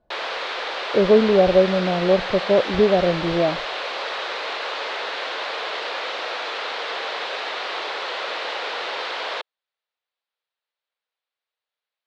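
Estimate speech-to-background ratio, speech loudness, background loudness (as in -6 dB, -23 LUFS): 8.0 dB, -19.0 LUFS, -27.0 LUFS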